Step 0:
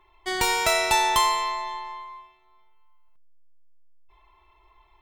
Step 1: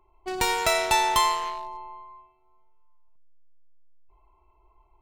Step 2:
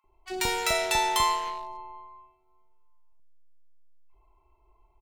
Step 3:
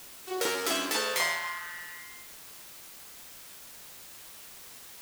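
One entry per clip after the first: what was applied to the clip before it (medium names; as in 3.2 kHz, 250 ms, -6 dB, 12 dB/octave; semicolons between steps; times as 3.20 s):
local Wiener filter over 25 samples
bands offset in time highs, lows 40 ms, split 1.1 kHz; trim -1.5 dB
full-wave rectifier; high-pass sweep 340 Hz -> 1.6 kHz, 0.95–1.76 s; word length cut 8-bit, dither triangular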